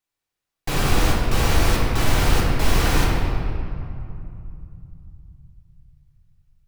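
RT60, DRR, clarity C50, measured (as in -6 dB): 2.6 s, -3.5 dB, 0.0 dB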